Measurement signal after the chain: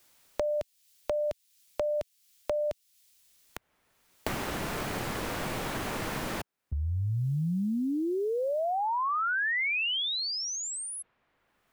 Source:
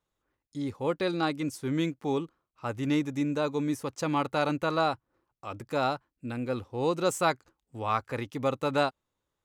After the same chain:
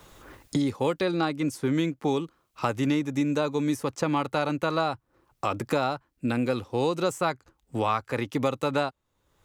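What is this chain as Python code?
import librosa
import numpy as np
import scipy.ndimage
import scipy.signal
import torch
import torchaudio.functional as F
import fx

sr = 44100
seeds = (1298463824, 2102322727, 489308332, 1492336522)

y = fx.band_squash(x, sr, depth_pct=100)
y = y * 10.0 ** (1.5 / 20.0)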